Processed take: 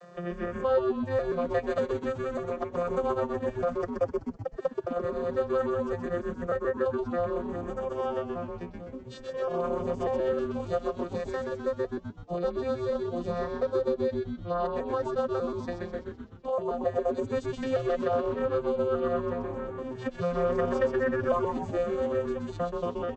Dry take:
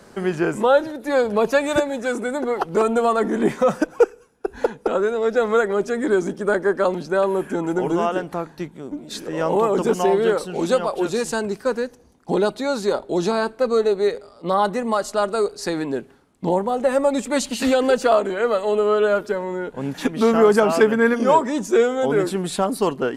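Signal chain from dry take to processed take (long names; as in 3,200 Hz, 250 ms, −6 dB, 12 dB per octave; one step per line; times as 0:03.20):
vocoder with an arpeggio as carrier bare fifth, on F3, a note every 592 ms
high-pass filter 600 Hz 6 dB per octave
comb filter 1.7 ms, depth 77%
transient designer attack +1 dB, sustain −7 dB
echo with shifted repeats 127 ms, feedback 53%, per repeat −140 Hz, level −4 dB
multiband upward and downward compressor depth 40%
level −8.5 dB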